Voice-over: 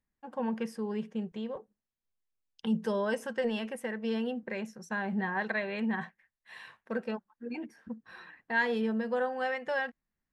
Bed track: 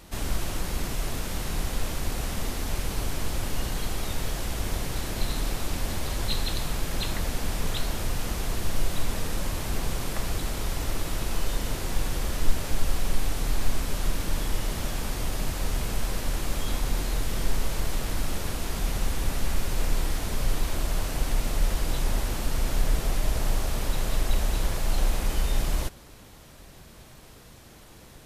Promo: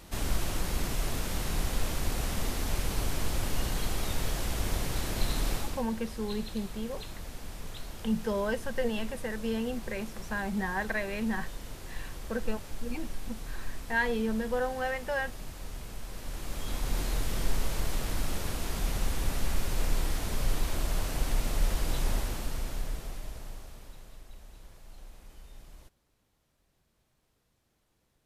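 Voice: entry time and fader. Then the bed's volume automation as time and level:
5.40 s, 0.0 dB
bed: 5.56 s -1.5 dB
5.88 s -13 dB
16.05 s -13 dB
17.00 s -3 dB
22.12 s -3 dB
24.26 s -25 dB

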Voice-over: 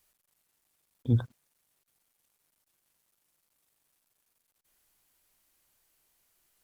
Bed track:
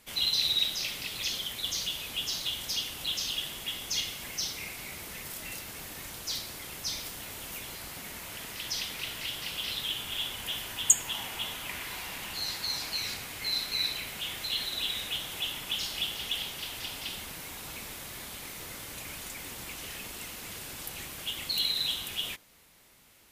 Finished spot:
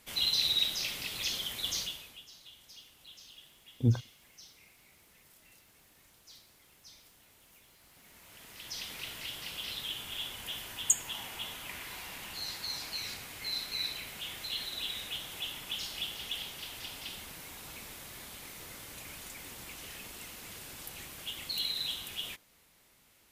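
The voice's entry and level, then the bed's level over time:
2.75 s, -1.0 dB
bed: 1.79 s -1.5 dB
2.27 s -20.5 dB
7.77 s -20.5 dB
8.92 s -5 dB

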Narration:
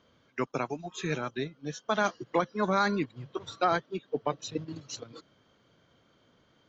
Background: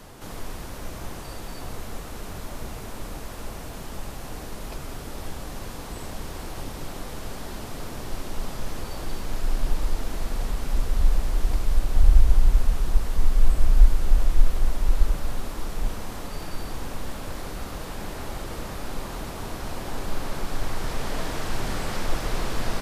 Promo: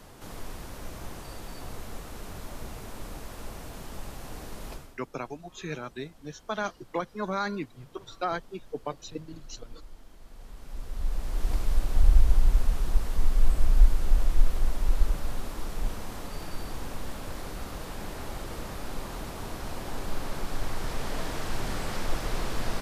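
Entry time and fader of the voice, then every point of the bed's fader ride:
4.60 s, -4.0 dB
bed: 4.73 s -4.5 dB
5.00 s -22.5 dB
10.19 s -22.5 dB
11.53 s -3.5 dB

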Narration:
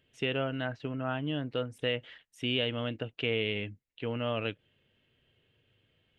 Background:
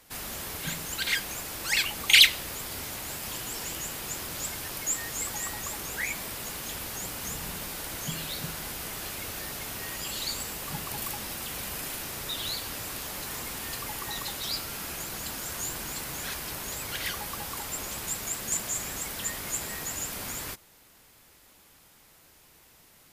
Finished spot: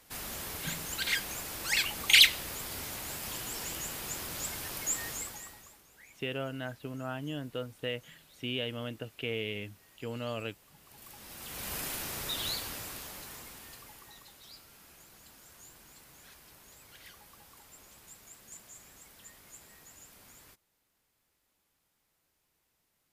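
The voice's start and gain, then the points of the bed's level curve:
6.00 s, -4.5 dB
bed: 5.10 s -3 dB
5.85 s -25 dB
10.75 s -25 dB
11.73 s -1.5 dB
12.49 s -1.5 dB
14.28 s -20 dB

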